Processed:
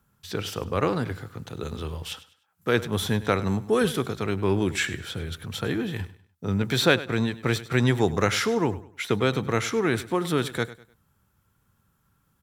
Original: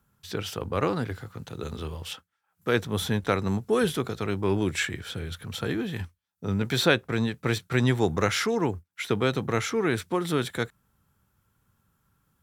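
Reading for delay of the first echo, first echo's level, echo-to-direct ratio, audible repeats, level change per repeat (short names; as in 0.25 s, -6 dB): 0.1 s, -16.5 dB, -16.0 dB, 2, -10.0 dB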